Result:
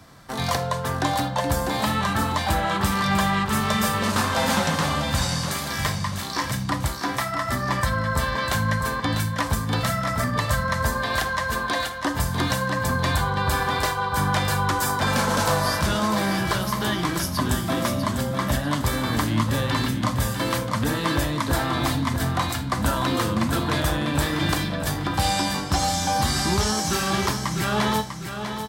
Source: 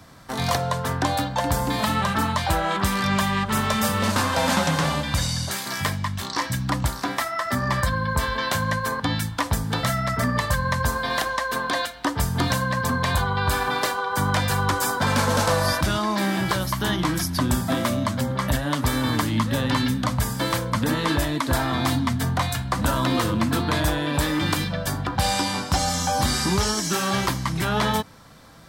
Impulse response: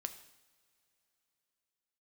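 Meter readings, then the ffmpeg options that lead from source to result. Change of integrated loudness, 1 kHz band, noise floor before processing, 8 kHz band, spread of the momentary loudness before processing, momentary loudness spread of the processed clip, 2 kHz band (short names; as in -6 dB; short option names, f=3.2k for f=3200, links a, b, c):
0.0 dB, 0.0 dB, -33 dBFS, 0.0 dB, 4 LU, 4 LU, 0.0 dB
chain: -filter_complex "[0:a]aecho=1:1:647|1294|1941|2588:0.398|0.143|0.0516|0.0186[a];[1:a]atrim=start_sample=2205,atrim=end_sample=3528,asetrate=42336,aresample=44100[b];[a][b]afir=irnorm=-1:irlink=0,volume=1dB"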